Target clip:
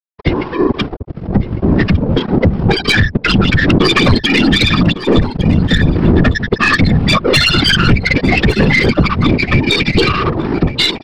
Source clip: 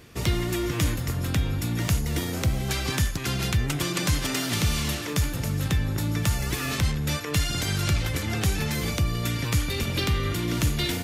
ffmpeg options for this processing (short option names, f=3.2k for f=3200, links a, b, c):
-filter_complex "[0:a]highpass=f=320:p=1,afftfilt=real='re*gte(hypot(re,im),0.1)':imag='im*gte(hypot(re,im),0.1)':win_size=1024:overlap=0.75,dynaudnorm=f=240:g=13:m=9dB,aresample=11025,aeval=exprs='sgn(val(0))*max(abs(val(0))-0.015,0)':c=same,aresample=44100,afftfilt=real='hypot(re,im)*cos(2*PI*random(0))':imag='hypot(re,im)*sin(2*PI*random(1))':win_size=512:overlap=0.75,acrossover=split=1200[a][b];[a]aeval=exprs='val(0)*(1-0.7/2+0.7/2*cos(2*PI*2.9*n/s))':c=same[c];[b]aeval=exprs='val(0)*(1-0.7/2-0.7/2*cos(2*PI*2.9*n/s))':c=same[d];[c][d]amix=inputs=2:normalize=0,aeval=exprs='(tanh(39.8*val(0)+0.35)-tanh(0.35))/39.8':c=same,asplit=2[e][f];[f]aecho=0:1:1154:0.126[g];[e][g]amix=inputs=2:normalize=0,alimiter=level_in=34.5dB:limit=-1dB:release=50:level=0:latency=1,volume=-1dB"